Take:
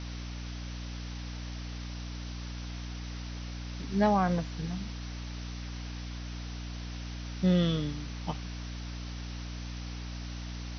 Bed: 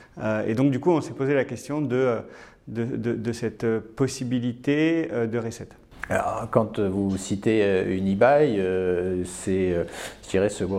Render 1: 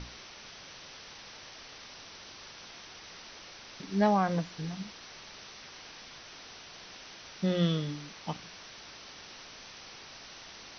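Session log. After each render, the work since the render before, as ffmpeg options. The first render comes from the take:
-af "bandreject=f=60:t=h:w=6,bandreject=f=120:t=h:w=6,bandreject=f=180:t=h:w=6,bandreject=f=240:t=h:w=6,bandreject=f=300:t=h:w=6"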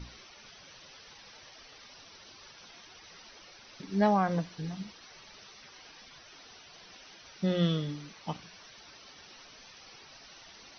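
-af "afftdn=nr=10:nf=-49"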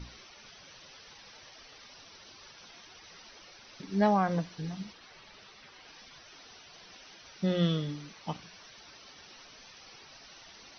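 -filter_complex "[0:a]asettb=1/sr,asplit=3[a][b][c];[a]atrim=end=4.934[d];[b]atrim=start=4.93:end=5.88,asetpts=PTS-STARTPTS,afade=t=in:d=0.004:c=qsin,afade=t=out:st=0.946:d=0.004:c=qsin,lowpass=4.6k[e];[c]atrim=start=5.876[f];[d][e]acrossfade=d=0.004:c1=hsin:c2=qsin[g];[g][f]acrossfade=d=0.004:c1=qsin:c2=hsin"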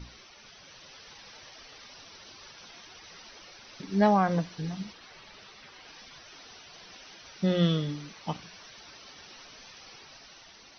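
-af "dynaudnorm=f=230:g=7:m=3dB"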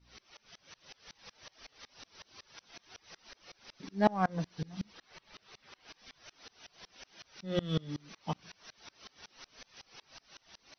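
-filter_complex "[0:a]asplit=2[a][b];[b]asoftclip=type=hard:threshold=-23.5dB,volume=-11.5dB[c];[a][c]amix=inputs=2:normalize=0,aeval=exprs='val(0)*pow(10,-29*if(lt(mod(-5.4*n/s,1),2*abs(-5.4)/1000),1-mod(-5.4*n/s,1)/(2*abs(-5.4)/1000),(mod(-5.4*n/s,1)-2*abs(-5.4)/1000)/(1-2*abs(-5.4)/1000))/20)':c=same"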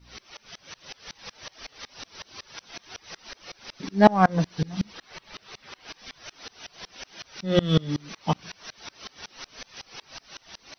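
-af "volume=11.5dB,alimiter=limit=-1dB:level=0:latency=1"

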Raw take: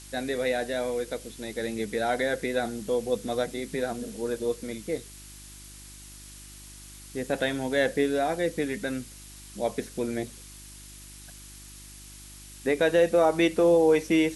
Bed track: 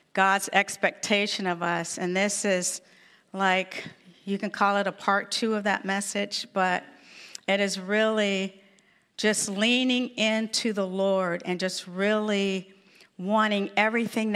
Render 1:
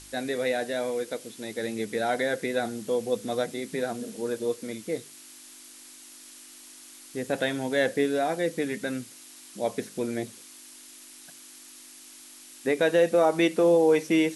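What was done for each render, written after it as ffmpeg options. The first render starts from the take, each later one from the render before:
-af "bandreject=f=50:t=h:w=4,bandreject=f=100:t=h:w=4,bandreject=f=150:t=h:w=4,bandreject=f=200:t=h:w=4"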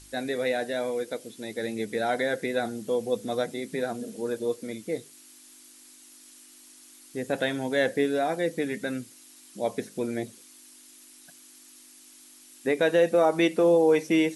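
-af "afftdn=nr=6:nf=-49"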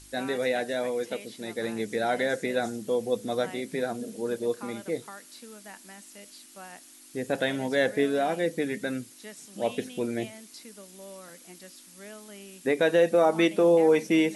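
-filter_complex "[1:a]volume=-21dB[a];[0:a][a]amix=inputs=2:normalize=0"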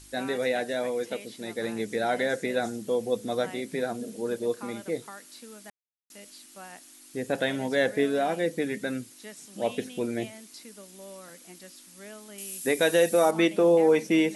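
-filter_complex "[0:a]asettb=1/sr,asplit=3[a][b][c];[a]atrim=end=12.384[d];[b]atrim=start=12.38:end=13.31,asetpts=PTS-STARTPTS,afade=t=in:d=0.004:c=qsin,afade=t=out:st=0.926:d=0.004:c=qsin,aemphasis=mode=production:type=75fm[e];[c]atrim=start=13.306[f];[d][e]acrossfade=d=0.004:c1=hsin:c2=qsin[g];[g][f]acrossfade=d=0.004:c1=qsin:c2=hsin,asplit=3[h][i][j];[h]atrim=end=5.7,asetpts=PTS-STARTPTS,afade=t=out:st=5.696:d=0.004:c=hsin[k];[i]atrim=start=5.7:end=6.1,asetpts=PTS-STARTPTS,volume=0[l];[j]atrim=start=6.1,asetpts=PTS-STARTPTS,afade=t=in:d=0.004:c=hsin[m];[k][l][m]concat=n=3:v=0:a=1"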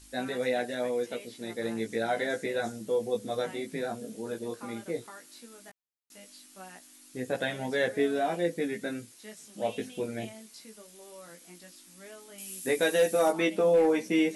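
-af "flanger=delay=16:depth=2.5:speed=0.15,volume=17dB,asoftclip=hard,volume=-17dB"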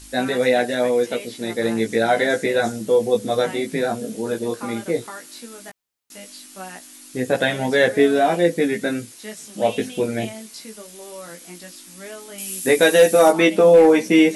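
-af "volume=11.5dB"

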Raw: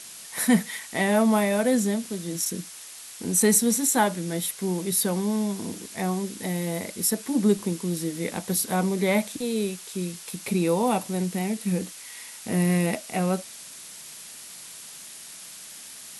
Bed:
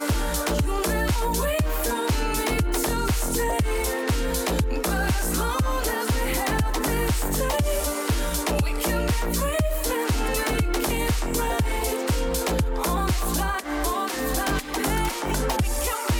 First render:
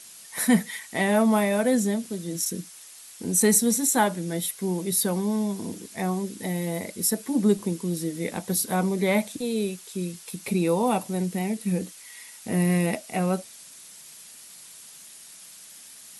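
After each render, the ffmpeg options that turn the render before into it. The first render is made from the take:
-af "afftdn=nr=6:nf=-43"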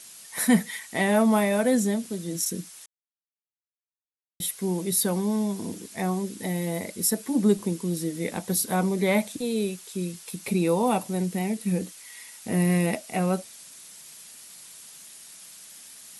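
-filter_complex "[0:a]asplit=3[a][b][c];[a]atrim=end=2.86,asetpts=PTS-STARTPTS,afade=t=out:st=2.856:d=0.004:c=hsin[d];[b]atrim=start=2.86:end=4.4,asetpts=PTS-STARTPTS,volume=0[e];[c]atrim=start=4.4,asetpts=PTS-STARTPTS,afade=t=in:d=0.004:c=hsin[f];[d][e][f]concat=n=3:v=0:a=1"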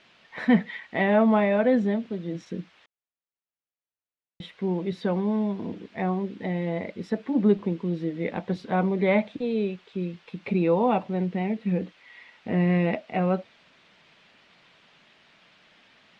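-af "lowpass=f=3.1k:w=0.5412,lowpass=f=3.1k:w=1.3066,equalizer=f=570:t=o:w=0.77:g=2.5"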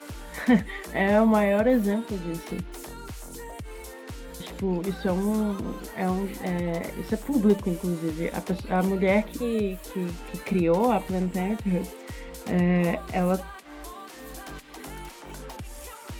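-filter_complex "[1:a]volume=-15.5dB[a];[0:a][a]amix=inputs=2:normalize=0"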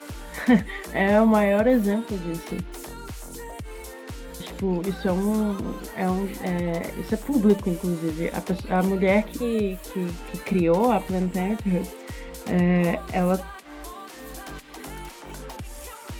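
-af "volume=2dB"

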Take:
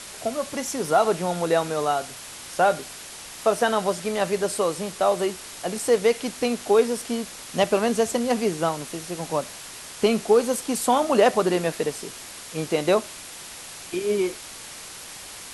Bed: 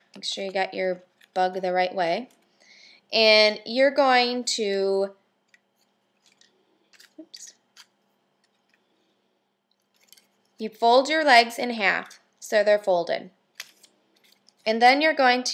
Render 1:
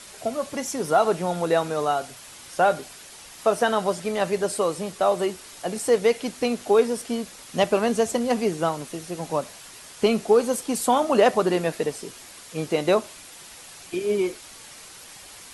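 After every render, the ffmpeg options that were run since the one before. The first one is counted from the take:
-af "afftdn=nr=6:nf=-40"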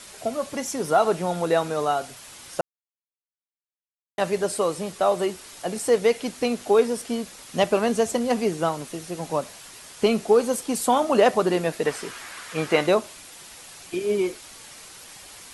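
-filter_complex "[0:a]asettb=1/sr,asplit=3[a][b][c];[a]atrim=end=11.854[d];[b]atrim=start=11.85:end=12.87,asetpts=PTS-STARTPTS,afade=t=in:d=0.004:c=qsin,afade=t=out:st=1.016:d=0.004:c=qsin,equalizer=f=1.5k:t=o:w=1.8:g=13[e];[c]atrim=start=12.866[f];[d][e]acrossfade=d=0.004:c1=hsin:c2=qsin[g];[g][f]acrossfade=d=0.004:c1=qsin:c2=hsin,asplit=3[h][i][j];[h]atrim=end=2.61,asetpts=PTS-STARTPTS,afade=t=out:st=2.606:d=0.004:c=hsin[k];[i]atrim=start=2.61:end=4.18,asetpts=PTS-STARTPTS,volume=0[l];[j]atrim=start=4.18,asetpts=PTS-STARTPTS,afade=t=in:d=0.004:c=hsin[m];[k][l][m]concat=n=3:v=0:a=1"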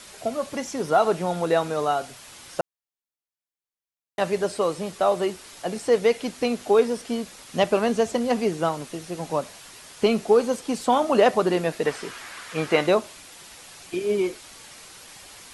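-filter_complex "[0:a]acrossover=split=6200[a][b];[b]acompressor=threshold=-46dB:ratio=4:attack=1:release=60[c];[a][c]amix=inputs=2:normalize=0"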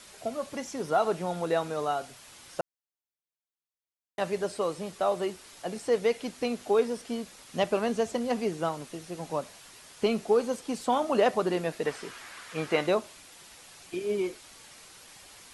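-af "volume=-6dB"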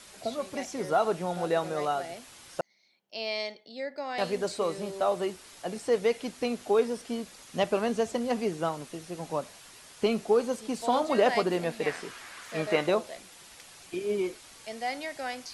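-filter_complex "[1:a]volume=-16.5dB[a];[0:a][a]amix=inputs=2:normalize=0"

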